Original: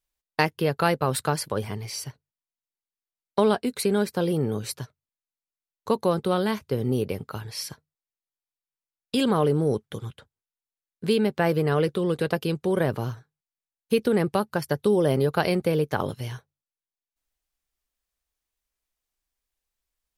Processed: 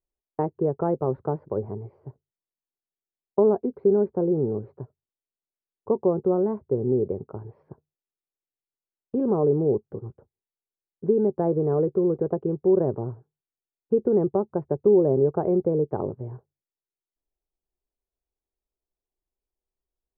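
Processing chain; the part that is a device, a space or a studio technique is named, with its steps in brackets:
under water (low-pass filter 880 Hz 24 dB per octave; parametric band 380 Hz +9.5 dB 0.42 octaves)
level −2.5 dB

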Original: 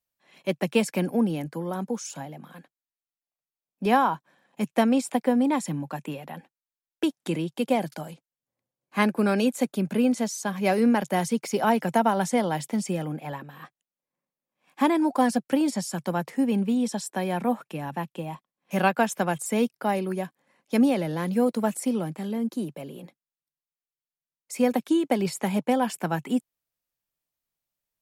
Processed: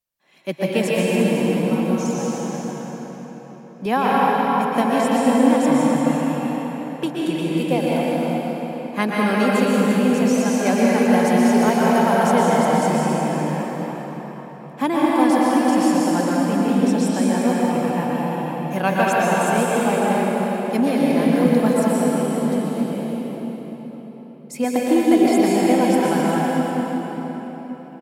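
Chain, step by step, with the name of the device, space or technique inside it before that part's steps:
0:24.64–0:25.39: comb filter 2.9 ms
cave (single-tap delay 351 ms −9.5 dB; convolution reverb RT60 4.5 s, pre-delay 113 ms, DRR −6 dB)

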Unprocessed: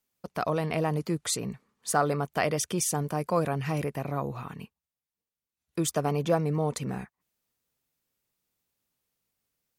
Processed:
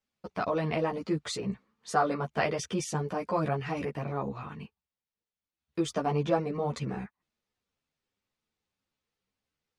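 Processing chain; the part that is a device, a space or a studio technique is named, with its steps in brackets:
string-machine ensemble chorus (string-ensemble chorus; low-pass filter 4,700 Hz 12 dB per octave)
level +2 dB

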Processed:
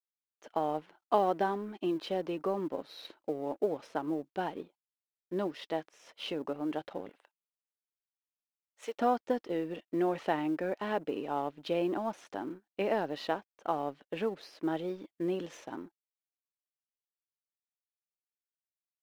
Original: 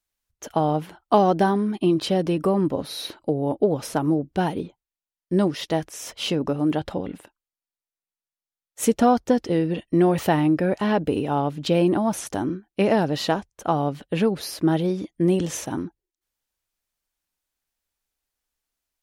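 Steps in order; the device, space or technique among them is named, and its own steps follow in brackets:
phone line with mismatched companding (band-pass filter 320–3,500 Hz; mu-law and A-law mismatch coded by A)
0:07.09–0:08.98: high-pass filter 610 Hz 12 dB per octave
level −8.5 dB

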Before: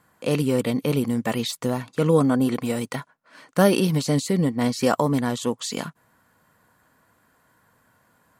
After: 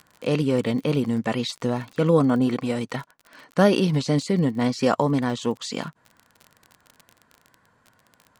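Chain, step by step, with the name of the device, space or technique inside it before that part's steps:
lo-fi chain (low-pass filter 5,800 Hz 12 dB per octave; tape wow and flutter; surface crackle 33 per second −33 dBFS)

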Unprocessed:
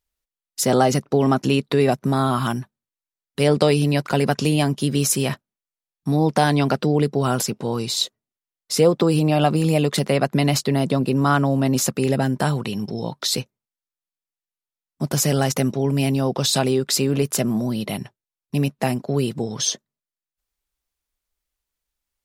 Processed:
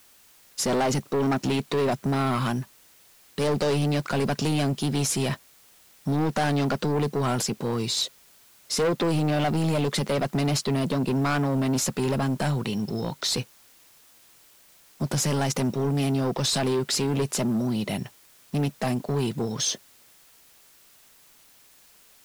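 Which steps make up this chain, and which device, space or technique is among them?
compact cassette (soft clipping −20 dBFS, distortion −8 dB; low-pass filter 10,000 Hz; tape wow and flutter 29 cents; white noise bed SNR 29 dB)

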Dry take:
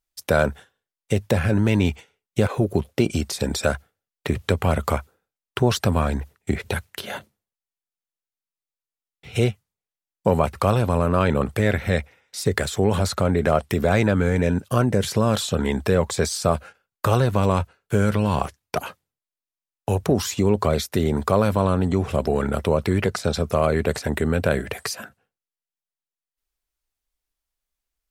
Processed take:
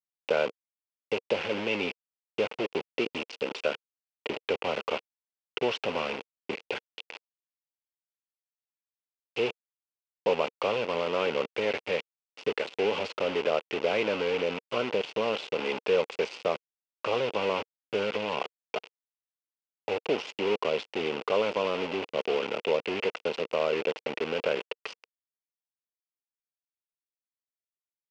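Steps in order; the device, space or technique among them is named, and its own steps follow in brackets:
hand-held game console (bit reduction 4 bits; loudspeaker in its box 420–4,100 Hz, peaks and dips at 470 Hz +6 dB, 700 Hz −4 dB, 1,200 Hz −5 dB, 1,700 Hz −9 dB, 2,700 Hz +7 dB, 3,900 Hz −7 dB)
level −5.5 dB

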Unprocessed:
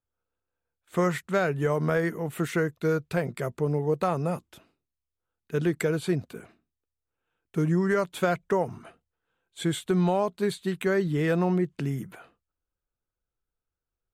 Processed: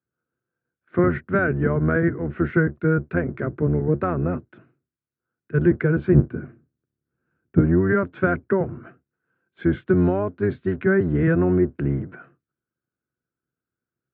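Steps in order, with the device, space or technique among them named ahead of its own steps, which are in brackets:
0:06.14–0:07.59: bass and treble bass +12 dB, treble −13 dB
sub-octave bass pedal (sub-octave generator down 1 octave, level +4 dB; loudspeaker in its box 85–2,200 Hz, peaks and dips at 91 Hz −5 dB, 140 Hz +6 dB, 250 Hz +5 dB, 350 Hz +8 dB, 860 Hz −6 dB, 1,500 Hz +9 dB)

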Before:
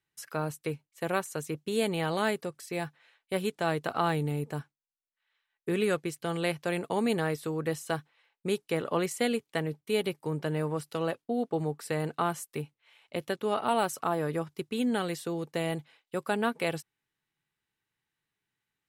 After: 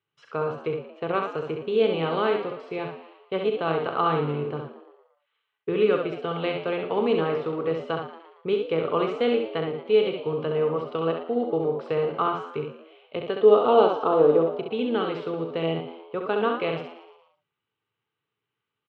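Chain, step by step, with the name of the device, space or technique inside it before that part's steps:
0:13.39–0:14.58: octave-band graphic EQ 125/250/500/2,000/4,000/8,000 Hz −5/+5/+8/−7/+7/−11 dB
ambience of single reflections 37 ms −11.5 dB, 67 ms −5 dB
frequency-shifting delay pedal into a guitar cabinet (echo with shifted repeats 115 ms, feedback 46%, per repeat +87 Hz, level −12.5 dB; loudspeaker in its box 87–3,400 Hz, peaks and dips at 110 Hz +6 dB, 190 Hz −3 dB, 440 Hz +9 dB, 1,200 Hz +8 dB, 1,800 Hz −7 dB, 3,000 Hz +5 dB)

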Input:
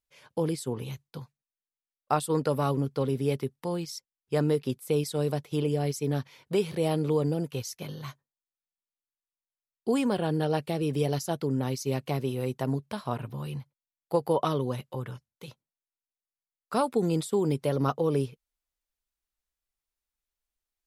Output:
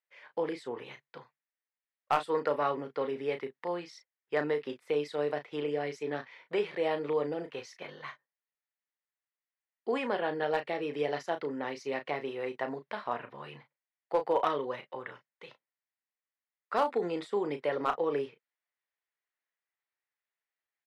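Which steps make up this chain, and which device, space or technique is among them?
megaphone (band-pass filter 470–2,700 Hz; parametric band 1,900 Hz +9.5 dB 0.43 octaves; hard clipping −18.5 dBFS, distortion −22 dB; double-tracking delay 34 ms −9 dB)

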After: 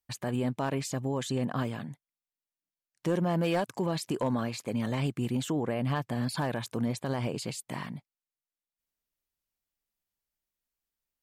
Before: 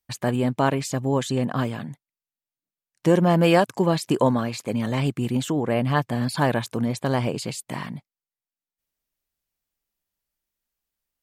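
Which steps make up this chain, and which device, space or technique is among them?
clipper into limiter (hard clipping −11 dBFS, distortion −23 dB; brickwall limiter −16 dBFS, peak gain reduction 5 dB)
level −5.5 dB

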